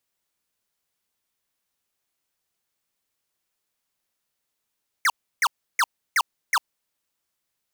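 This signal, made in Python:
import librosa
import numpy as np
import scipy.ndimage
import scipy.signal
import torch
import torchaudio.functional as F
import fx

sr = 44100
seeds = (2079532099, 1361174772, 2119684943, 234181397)

y = fx.laser_zaps(sr, level_db=-19.0, start_hz=2300.0, end_hz=840.0, length_s=0.05, wave='square', shots=5, gap_s=0.32)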